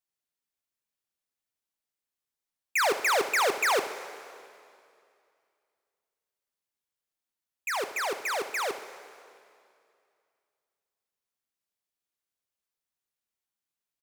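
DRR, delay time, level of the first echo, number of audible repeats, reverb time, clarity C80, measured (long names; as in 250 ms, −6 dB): 8.5 dB, 75 ms, −14.0 dB, 1, 2.5 s, 11.5 dB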